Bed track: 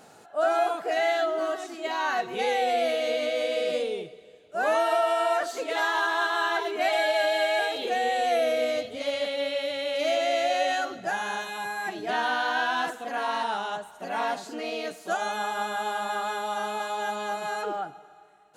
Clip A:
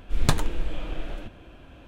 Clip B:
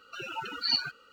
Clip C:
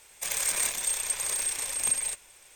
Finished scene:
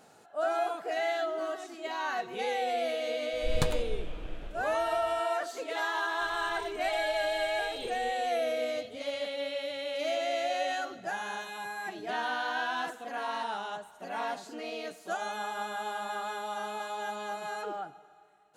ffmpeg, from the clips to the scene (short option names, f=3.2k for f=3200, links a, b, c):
-filter_complex "[0:a]volume=-6dB[a];[3:a]aemphasis=mode=reproduction:type=riaa[b];[1:a]atrim=end=1.87,asetpts=PTS-STARTPTS,volume=-8dB,afade=t=in:d=0.004:c=hsin,afade=t=out:st=1.866:d=0.004:c=hsin,adelay=146853S[c];[b]atrim=end=2.55,asetpts=PTS-STARTPTS,volume=-17.5dB,afade=t=in:d=0.004:c=hsin,afade=t=out:st=2.546:d=0.004:c=hsin,adelay=5970[d];[a][c][d]amix=inputs=3:normalize=0"